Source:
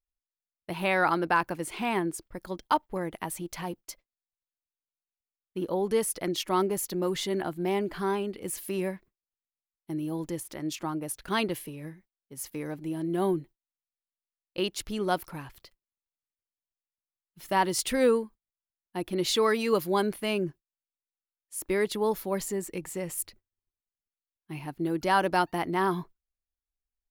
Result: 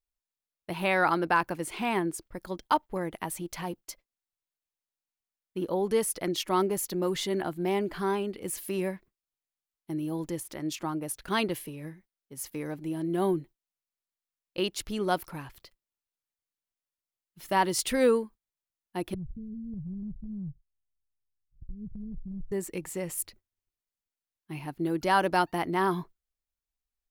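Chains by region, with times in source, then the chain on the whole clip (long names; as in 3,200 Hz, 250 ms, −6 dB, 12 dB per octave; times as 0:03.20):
0:19.14–0:22.52: inverse Chebyshev low-pass filter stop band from 870 Hz, stop band 80 dB + spectral tilt −4.5 dB per octave + downward compressor, threshold −34 dBFS
whole clip: no processing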